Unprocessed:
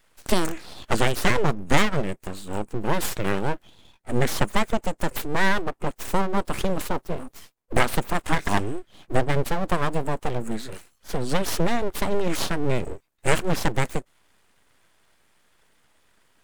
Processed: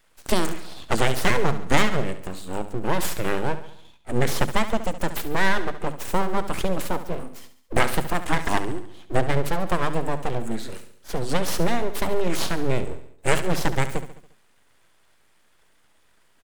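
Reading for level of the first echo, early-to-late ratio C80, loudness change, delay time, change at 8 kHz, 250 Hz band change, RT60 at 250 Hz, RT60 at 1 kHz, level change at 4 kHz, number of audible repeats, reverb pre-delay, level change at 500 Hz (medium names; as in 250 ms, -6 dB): -12.5 dB, no reverb, 0.0 dB, 70 ms, +0.5 dB, -0.5 dB, no reverb, no reverb, +0.5 dB, 5, no reverb, +0.5 dB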